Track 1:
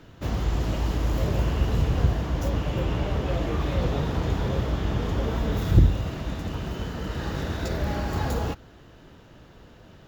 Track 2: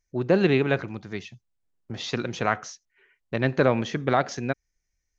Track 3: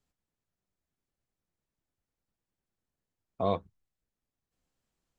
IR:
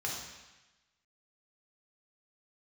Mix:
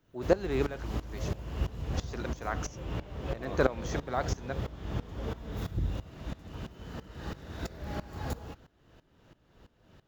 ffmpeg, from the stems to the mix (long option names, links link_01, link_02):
-filter_complex "[0:a]volume=-5dB[link_01];[1:a]aemphasis=mode=production:type=riaa,deesser=0.75,equalizer=frequency=2900:width=0.95:gain=-12.5,volume=2dB[link_02];[2:a]volume=-5dB[link_03];[link_01][link_02][link_03]amix=inputs=3:normalize=0,aeval=exprs='val(0)*pow(10,-18*if(lt(mod(-3*n/s,1),2*abs(-3)/1000),1-mod(-3*n/s,1)/(2*abs(-3)/1000),(mod(-3*n/s,1)-2*abs(-3)/1000)/(1-2*abs(-3)/1000))/20)':channel_layout=same"